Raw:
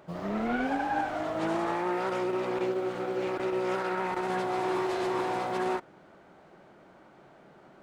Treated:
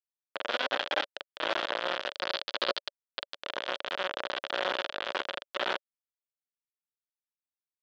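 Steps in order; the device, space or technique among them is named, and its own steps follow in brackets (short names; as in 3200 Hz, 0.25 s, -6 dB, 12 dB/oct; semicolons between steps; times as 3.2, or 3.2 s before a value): hand-held game console (bit-crush 4-bit; speaker cabinet 450–4100 Hz, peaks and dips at 570 Hz +9 dB, 810 Hz -3 dB, 1500 Hz +3 dB, 2200 Hz -4 dB, 3300 Hz +6 dB); 2.13–3.34 bell 4500 Hz +12 dB 0.55 oct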